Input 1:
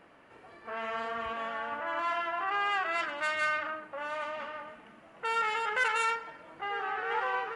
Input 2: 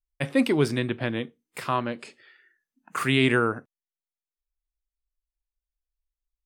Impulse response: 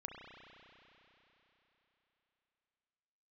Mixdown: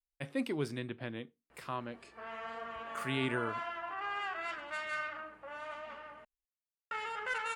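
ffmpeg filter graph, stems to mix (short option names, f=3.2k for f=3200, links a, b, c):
-filter_complex "[0:a]aeval=exprs='val(0)+0.000631*(sin(2*PI*60*n/s)+sin(2*PI*2*60*n/s)/2+sin(2*PI*3*60*n/s)/3+sin(2*PI*4*60*n/s)/4+sin(2*PI*5*60*n/s)/5)':c=same,flanger=delay=4.1:depth=6.6:regen=81:speed=0.91:shape=triangular,adelay=1500,volume=-3.5dB,asplit=3[a][b][c];[a]atrim=end=6.25,asetpts=PTS-STARTPTS,afade=t=out:st=6.246:d=0.004:c=hsin[d];[b]atrim=start=6.25:end=6.91,asetpts=PTS-STARTPTS,volume=0[e];[c]atrim=start=6.91,asetpts=PTS-STARTPTS,afade=t=in:d=0.004:c=hsin[f];[d][e][f]concat=n=3:v=0:a=1[g];[1:a]volume=-13dB[h];[g][h]amix=inputs=2:normalize=0"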